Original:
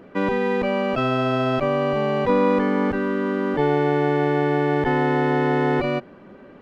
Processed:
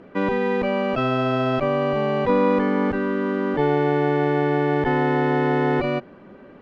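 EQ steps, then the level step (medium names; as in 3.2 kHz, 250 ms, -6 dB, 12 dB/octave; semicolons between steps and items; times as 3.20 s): distance through air 52 m; 0.0 dB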